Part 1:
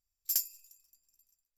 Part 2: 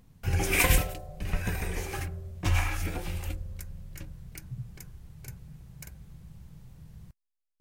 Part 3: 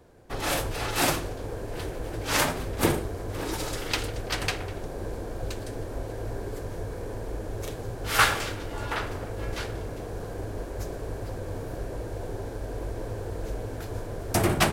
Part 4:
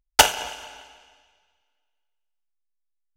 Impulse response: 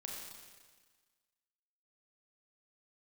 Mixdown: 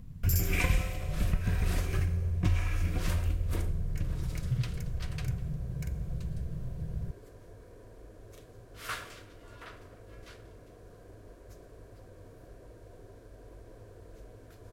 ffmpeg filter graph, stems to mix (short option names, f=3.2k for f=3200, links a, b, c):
-filter_complex "[0:a]alimiter=level_in=2dB:limit=-24dB:level=0:latency=1:release=79,volume=-2dB,volume=1dB,asplit=2[a][b];[b]volume=-5.5dB[c];[1:a]acrossover=split=8300[d][e];[e]acompressor=threshold=-47dB:ratio=4:attack=1:release=60[f];[d][f]amix=inputs=2:normalize=0,volume=-0.5dB,asplit=2[g][h];[h]volume=-10.5dB[i];[2:a]adelay=700,volume=-17dB[j];[g]bass=f=250:g=13,treble=f=4k:g=-4,acompressor=threshold=-26dB:ratio=6,volume=0dB[k];[4:a]atrim=start_sample=2205[l];[c][i]amix=inputs=2:normalize=0[m];[m][l]afir=irnorm=-1:irlink=0[n];[a][j][k][n]amix=inputs=4:normalize=0,asuperstop=centerf=840:order=8:qfactor=6.2"